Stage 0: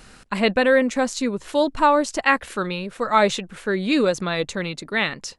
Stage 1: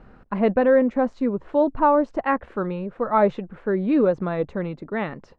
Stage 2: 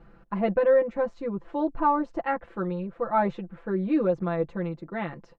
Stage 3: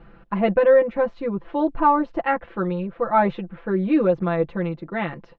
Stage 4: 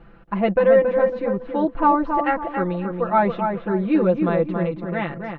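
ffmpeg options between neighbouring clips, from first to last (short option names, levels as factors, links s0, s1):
-af "lowpass=1000,volume=1.12"
-af "aecho=1:1:5.9:0.95,volume=0.422"
-af "lowpass=f=3300:t=q:w=1.5,volume=1.78"
-filter_complex "[0:a]asplit=2[s0][s1];[s1]adelay=276,lowpass=f=1900:p=1,volume=0.562,asplit=2[s2][s3];[s3]adelay=276,lowpass=f=1900:p=1,volume=0.36,asplit=2[s4][s5];[s5]adelay=276,lowpass=f=1900:p=1,volume=0.36,asplit=2[s6][s7];[s7]adelay=276,lowpass=f=1900:p=1,volume=0.36[s8];[s0][s2][s4][s6][s8]amix=inputs=5:normalize=0"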